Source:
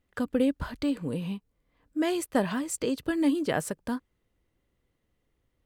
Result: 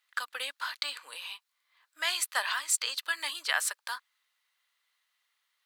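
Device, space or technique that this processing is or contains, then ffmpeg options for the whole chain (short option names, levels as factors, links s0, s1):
headphones lying on a table: -af "highpass=f=1100:w=0.5412,highpass=f=1100:w=1.3066,equalizer=f=4100:t=o:w=0.55:g=6.5,volume=2.11"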